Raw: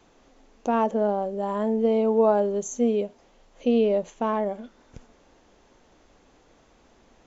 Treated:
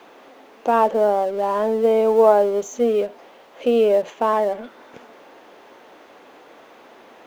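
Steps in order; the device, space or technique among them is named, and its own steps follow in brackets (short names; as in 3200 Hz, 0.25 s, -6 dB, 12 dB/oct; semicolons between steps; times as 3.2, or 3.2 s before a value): phone line with mismatched companding (BPF 380–3200 Hz; G.711 law mismatch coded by mu); gain +7 dB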